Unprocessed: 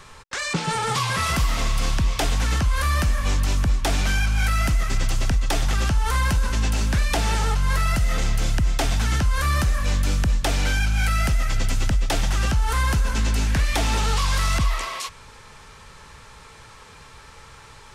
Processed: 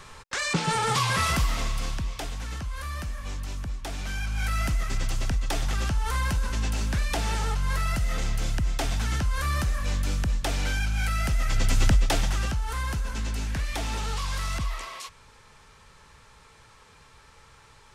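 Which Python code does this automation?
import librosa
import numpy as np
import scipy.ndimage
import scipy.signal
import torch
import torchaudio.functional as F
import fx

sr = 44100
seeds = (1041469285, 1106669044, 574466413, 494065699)

y = fx.gain(x, sr, db=fx.line((1.21, -1.0), (2.34, -12.5), (3.94, -12.5), (4.56, -5.5), (11.23, -5.5), (11.88, 2.0), (12.64, -8.5)))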